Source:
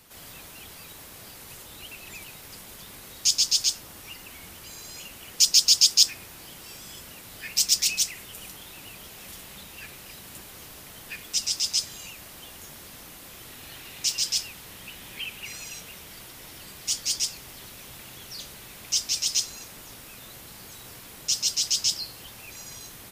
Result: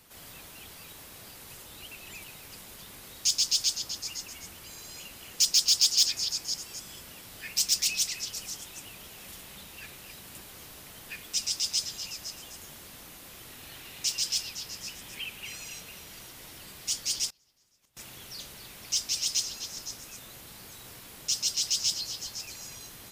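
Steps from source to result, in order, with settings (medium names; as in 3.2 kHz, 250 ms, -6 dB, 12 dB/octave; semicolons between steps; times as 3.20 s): repeats whose band climbs or falls 255 ms, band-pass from 3.5 kHz, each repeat 0.7 oct, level -8.5 dB; saturation -10.5 dBFS, distortion -18 dB; 17.29–17.97 s: inverted gate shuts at -31 dBFS, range -28 dB; trim -3 dB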